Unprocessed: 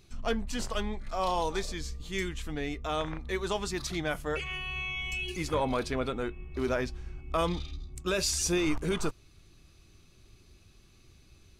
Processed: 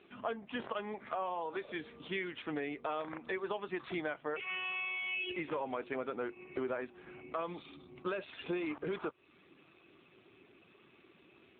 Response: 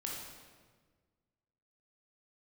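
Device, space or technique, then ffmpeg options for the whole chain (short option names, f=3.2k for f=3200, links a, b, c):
voicemail: -filter_complex "[0:a]asettb=1/sr,asplit=3[a][b][c];[a]atrim=end=4.144[d];[b]atrim=start=4.14:end=5.21,asetpts=PTS-STARTPTS,afade=t=in:d=0.004:c=qsin,afade=t=out:st=1.066:d=0.004:c=qsin,lowpass=6k[e];[c]atrim=start=5.206[f];[d][e]acrossfade=d=0.004:c1=hsin:c2=qsin[g];[g][f]acrossfade=d=0.004:c1=qsin:c2=hsin,highpass=320,lowpass=3k,acompressor=threshold=-43dB:ratio=6,volume=8.5dB" -ar 8000 -c:a libopencore_amrnb -b:a 7400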